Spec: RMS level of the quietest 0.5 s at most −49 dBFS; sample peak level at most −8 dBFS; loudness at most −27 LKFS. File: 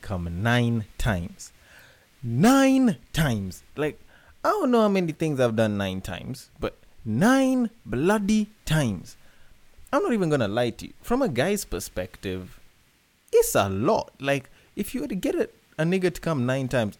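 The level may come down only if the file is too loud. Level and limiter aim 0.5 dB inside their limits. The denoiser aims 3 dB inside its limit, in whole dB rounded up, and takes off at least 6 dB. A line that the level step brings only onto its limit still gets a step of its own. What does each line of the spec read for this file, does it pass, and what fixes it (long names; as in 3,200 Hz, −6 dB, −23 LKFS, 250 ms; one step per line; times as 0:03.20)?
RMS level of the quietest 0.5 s −62 dBFS: in spec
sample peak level −9.5 dBFS: in spec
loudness −24.5 LKFS: out of spec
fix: level −3 dB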